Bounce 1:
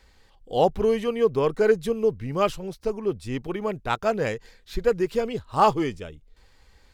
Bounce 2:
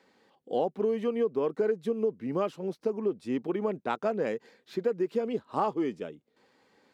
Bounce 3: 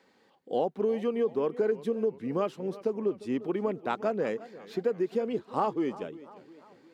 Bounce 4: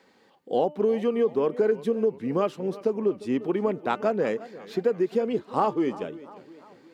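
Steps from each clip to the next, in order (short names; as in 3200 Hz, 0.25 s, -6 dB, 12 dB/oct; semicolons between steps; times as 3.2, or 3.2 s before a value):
HPF 220 Hz 24 dB/oct; tilt -3 dB/oct; compressor 5:1, threshold -23 dBFS, peak gain reduction 12 dB; gain -2 dB
warbling echo 0.351 s, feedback 51%, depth 105 cents, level -18 dB
de-hum 298 Hz, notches 10; gain +4.5 dB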